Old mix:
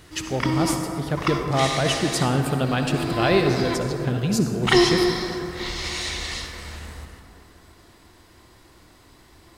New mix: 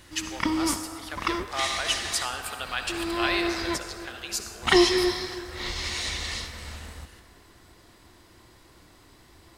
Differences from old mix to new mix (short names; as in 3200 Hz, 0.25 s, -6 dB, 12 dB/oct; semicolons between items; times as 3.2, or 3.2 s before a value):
speech: add HPF 1300 Hz 12 dB/oct; background: send -11.0 dB